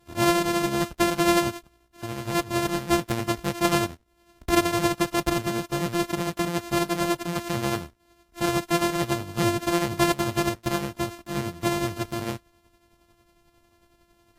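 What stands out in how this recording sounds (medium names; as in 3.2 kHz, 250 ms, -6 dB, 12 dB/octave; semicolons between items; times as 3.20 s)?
a buzz of ramps at a fixed pitch in blocks of 128 samples; tremolo triangle 11 Hz, depth 55%; Vorbis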